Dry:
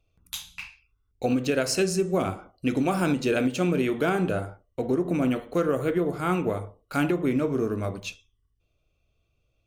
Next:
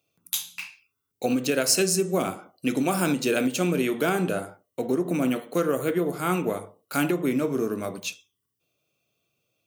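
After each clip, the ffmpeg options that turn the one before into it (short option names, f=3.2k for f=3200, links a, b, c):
-af "highpass=f=140:w=0.5412,highpass=f=140:w=1.3066,aemphasis=mode=production:type=50kf"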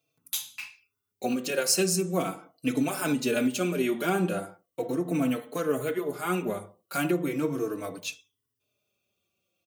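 -filter_complex "[0:a]asplit=2[a][b];[b]adelay=4.1,afreqshift=-0.38[c];[a][c]amix=inputs=2:normalize=1"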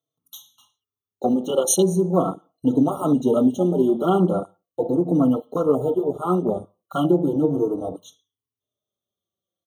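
-af "afwtdn=0.0316,afftfilt=real='re*eq(mod(floor(b*sr/1024/1400),2),0)':imag='im*eq(mod(floor(b*sr/1024/1400),2),0)':win_size=1024:overlap=0.75,volume=8.5dB"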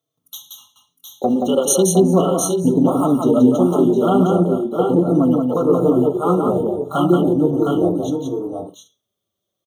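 -filter_complex "[0:a]asplit=2[a][b];[b]acompressor=threshold=-26dB:ratio=6,volume=3dB[c];[a][c]amix=inputs=2:normalize=0,aecho=1:1:177|710|733|780:0.631|0.473|0.376|0.112,volume=-1dB"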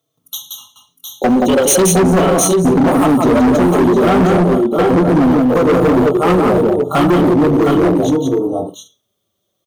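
-af "asoftclip=type=hard:threshold=-17dB,volume=8.5dB"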